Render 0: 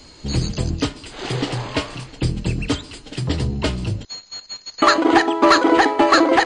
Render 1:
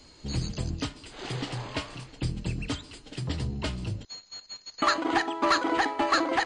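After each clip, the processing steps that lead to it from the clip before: dynamic bell 420 Hz, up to -7 dB, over -30 dBFS, Q 1.4; trim -9 dB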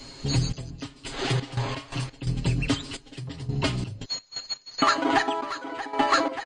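comb 7.4 ms, depth 71%; compression 2:1, threshold -32 dBFS, peak gain reduction 8.5 dB; trance gate "xxx...xx.x.x.x" 86 bpm -12 dB; trim +8.5 dB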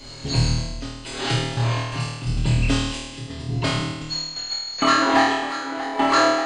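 flutter echo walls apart 4.4 m, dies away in 1.1 s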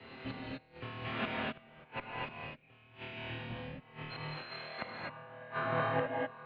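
inverted gate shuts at -17 dBFS, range -31 dB; mistuned SSB -160 Hz 320–3000 Hz; gated-style reverb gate 280 ms rising, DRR -2.5 dB; trim -5 dB

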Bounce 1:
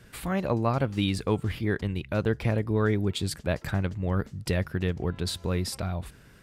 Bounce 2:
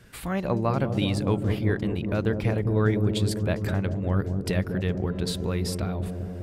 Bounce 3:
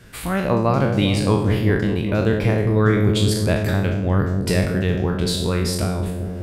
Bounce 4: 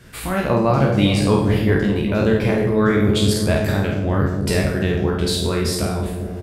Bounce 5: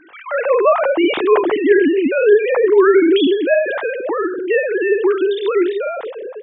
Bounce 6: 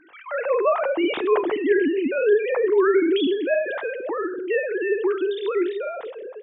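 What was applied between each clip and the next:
feedback echo behind a low-pass 201 ms, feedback 76%, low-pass 540 Hz, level -4.5 dB
spectral sustain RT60 0.67 s; trim +5 dB
early reflections 14 ms -6.5 dB, 50 ms -5.5 dB
formants replaced by sine waves; trim +3 dB
two-slope reverb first 0.55 s, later 1.6 s, DRR 19.5 dB; trim -7 dB

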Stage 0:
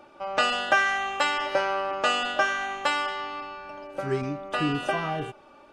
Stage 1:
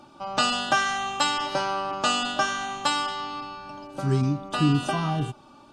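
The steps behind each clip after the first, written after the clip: ten-band graphic EQ 125 Hz +9 dB, 250 Hz +6 dB, 500 Hz -9 dB, 1 kHz +4 dB, 2 kHz -10 dB, 4 kHz +6 dB, 8 kHz +6 dB; trim +1.5 dB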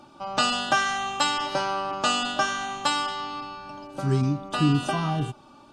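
no audible change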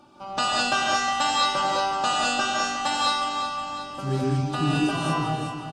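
feedback delay 362 ms, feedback 51%, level -10 dB; gated-style reverb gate 240 ms rising, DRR -4 dB; trim -4 dB

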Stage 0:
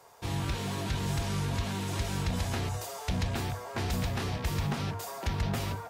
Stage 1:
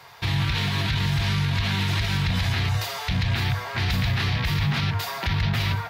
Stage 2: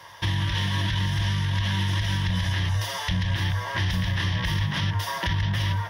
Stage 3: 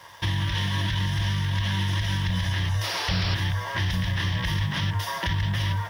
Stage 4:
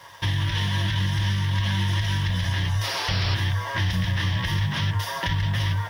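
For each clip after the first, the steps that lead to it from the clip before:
graphic EQ 125/250/500/2000/4000/8000 Hz +8/-4/-7/+8/+9/-10 dB; peak limiter -24 dBFS, peak gain reduction 9 dB; trim +8.5 dB
rippled EQ curve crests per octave 1.2, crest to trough 11 dB; compression 4:1, threshold -22 dBFS, peak gain reduction 5.5 dB
painted sound noise, 2.83–3.35 s, 270–5700 Hz -31 dBFS; in parallel at -10 dB: bit crusher 7-bit; on the sum: trim -3 dB
flange 0.37 Hz, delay 7.1 ms, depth 2.7 ms, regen -46%; trim +5 dB

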